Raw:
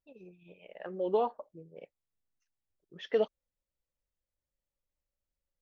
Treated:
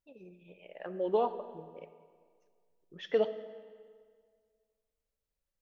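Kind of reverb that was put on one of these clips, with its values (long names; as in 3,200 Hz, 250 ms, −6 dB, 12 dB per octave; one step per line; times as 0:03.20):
comb and all-pass reverb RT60 1.9 s, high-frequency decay 0.8×, pre-delay 5 ms, DRR 11.5 dB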